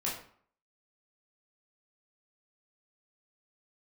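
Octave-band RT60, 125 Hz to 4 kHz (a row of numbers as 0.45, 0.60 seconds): 0.50, 0.55, 0.50, 0.55, 0.45, 0.40 seconds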